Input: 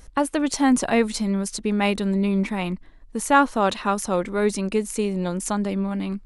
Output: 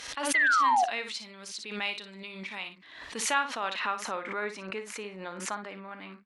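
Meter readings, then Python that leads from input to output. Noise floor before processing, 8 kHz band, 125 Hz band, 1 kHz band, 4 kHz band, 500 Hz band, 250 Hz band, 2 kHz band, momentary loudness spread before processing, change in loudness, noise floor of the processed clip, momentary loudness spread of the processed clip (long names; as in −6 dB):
−47 dBFS, −6.0 dB, below −20 dB, −4.0 dB, −2.5 dB, −14.0 dB, −21.5 dB, +1.0 dB, 8 LU, −7.0 dB, −49 dBFS, 18 LU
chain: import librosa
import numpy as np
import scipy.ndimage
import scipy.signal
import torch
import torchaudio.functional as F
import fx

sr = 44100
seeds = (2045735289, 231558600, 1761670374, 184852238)

y = scipy.signal.sosfilt(scipy.signal.butter(2, 61.0, 'highpass', fs=sr, output='sos'), x)
y = fx.peak_eq(y, sr, hz=9600.0, db=-5.5, octaves=1.1)
y = fx.filter_sweep_bandpass(y, sr, from_hz=3400.0, to_hz=1700.0, start_s=3.02, end_s=4.31, q=1.2)
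y = fx.spec_paint(y, sr, seeds[0], shape='fall', start_s=0.34, length_s=0.51, low_hz=680.0, high_hz=2100.0, level_db=-21.0)
y = fx.room_early_taps(y, sr, ms=(37, 58), db=(-16.0, -10.0))
y = fx.pre_swell(y, sr, db_per_s=59.0)
y = y * librosa.db_to_amplitude(-2.5)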